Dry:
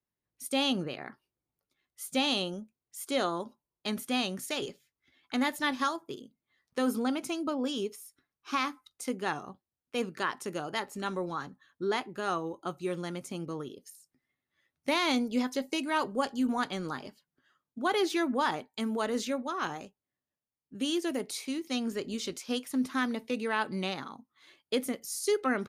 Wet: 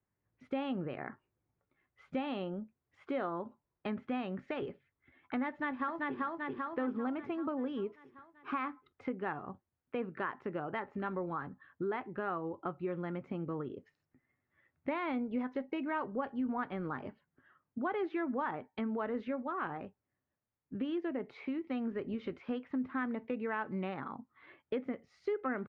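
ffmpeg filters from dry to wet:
-filter_complex "[0:a]asplit=2[a][b];[b]afade=t=in:st=5.49:d=0.01,afade=t=out:st=6.19:d=0.01,aecho=0:1:390|780|1170|1560|1950|2340|2730:0.841395|0.420698|0.210349|0.105174|0.0525872|0.0262936|0.0131468[c];[a][c]amix=inputs=2:normalize=0,lowpass=f=2.1k:w=0.5412,lowpass=f=2.1k:w=1.3066,equalizer=f=98:t=o:w=0.57:g=7.5,acompressor=threshold=-43dB:ratio=2.5,volume=5dB"

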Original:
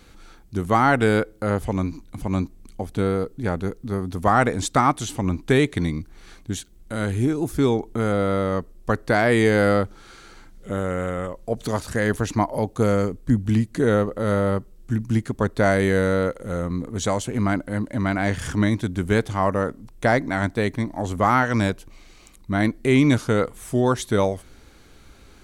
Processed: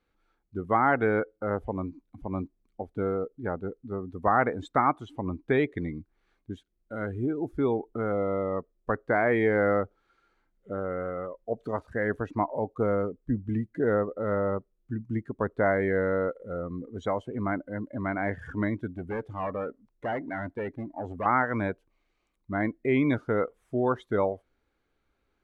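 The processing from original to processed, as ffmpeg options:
-filter_complex "[0:a]asettb=1/sr,asplit=3[a][b][c];[a]atrim=end=8.124[d];[b]atrim=start=8.12:end=8.57,asetpts=PTS-STARTPTS,afade=t=in:d=0.004:c=qsin,afade=t=out:st=0.446:d=0.004:c=qsin,equalizer=f=1.5k:w=6.3:g=-11.5[e];[c]atrim=start=8.566[f];[d][e]acrossfade=d=0.004:c1=hsin:c2=qsin[g];[g][f]acrossfade=d=0.004:c1=qsin:c2=hsin,asettb=1/sr,asplit=3[h][i][j];[h]atrim=end=18.904[k];[i]atrim=start=18.9:end=21.26,asetpts=PTS-STARTPTS,afade=t=in:d=0.004:c=qsin,afade=t=out:st=2.356:d=0.004:c=qsin,asoftclip=type=hard:threshold=-22dB[l];[j]atrim=start=21.256[m];[k][l]acrossfade=d=0.004:c1=hsin:c2=qsin[n];[n][m]acrossfade=d=0.004:c1=qsin:c2=hsin,bass=f=250:g=-14,treble=f=4k:g=-14,afftdn=nr=18:nf=-32,lowshelf=f=210:g=9.5,volume=-5dB"

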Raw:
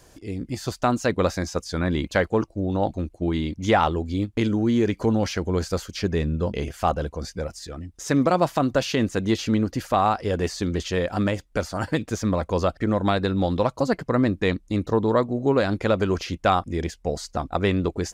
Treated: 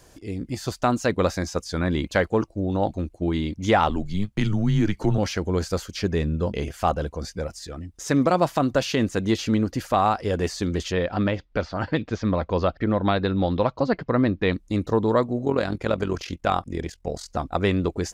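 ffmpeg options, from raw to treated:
-filter_complex "[0:a]asettb=1/sr,asplit=3[a][b][c];[a]atrim=end=3.894[d];[b]atrim=start=3.89:end=5.18,asetpts=PTS-STARTPTS,afade=t=in:d=0.004:c=qsin,afade=t=out:st=1.286:d=0.004:c=qsin,afreqshift=-99[e];[c]atrim=start=5.176[f];[d][e]acrossfade=d=0.004:c1=hsin:c2=qsin[g];[g][f]acrossfade=d=0.004:c1=qsin:c2=hsin,asettb=1/sr,asplit=3[h][i][j];[h]atrim=end=10.924[k];[i]atrim=start=10.92:end=14.53,asetpts=PTS-STARTPTS,afade=t=in:d=0.004:c=qsin,afade=t=out:st=3.606:d=0.004:c=qsin,lowpass=f=4.6k:w=0.5412,lowpass=f=4.6k:w=1.3066[l];[j]atrim=start=14.526[m];[k][l]acrossfade=d=0.004:c1=hsin:c2=qsin[n];[n][m]acrossfade=d=0.004:c1=qsin:c2=hsin,asplit=3[o][p][q];[o]afade=t=out:st=15.44:d=0.02[r];[p]tremolo=f=43:d=0.71,afade=t=in:st=15.44:d=0.02,afade=t=out:st=17.29:d=0.02[s];[q]afade=t=in:st=17.29:d=0.02[t];[r][s][t]amix=inputs=3:normalize=0"

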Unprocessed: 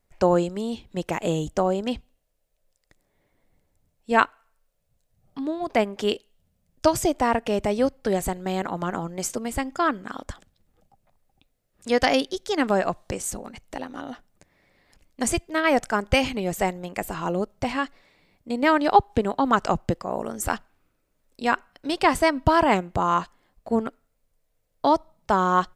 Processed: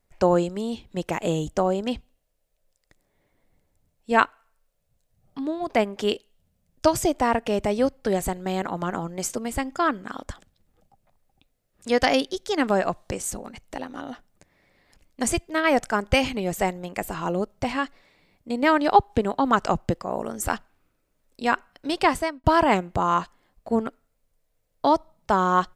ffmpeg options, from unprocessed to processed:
-filter_complex "[0:a]asplit=2[a][b];[a]atrim=end=22.44,asetpts=PTS-STARTPTS,afade=t=out:st=22.04:d=0.4[c];[b]atrim=start=22.44,asetpts=PTS-STARTPTS,afade=t=in:d=0.004:c=hsin[d];[c][d]concat=n=2:v=0:a=1"

